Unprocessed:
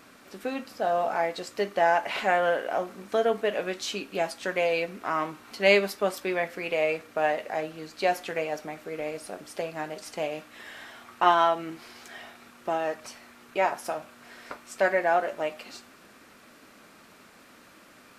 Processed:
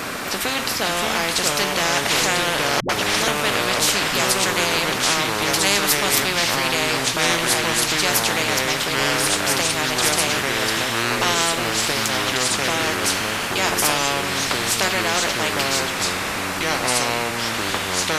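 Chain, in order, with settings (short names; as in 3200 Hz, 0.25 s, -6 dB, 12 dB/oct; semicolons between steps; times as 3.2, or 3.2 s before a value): echoes that change speed 0.486 s, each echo -3 st, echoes 3; 2.8–3.28 dispersion highs, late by 92 ms, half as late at 300 Hz; spectral compressor 4:1; gain +5 dB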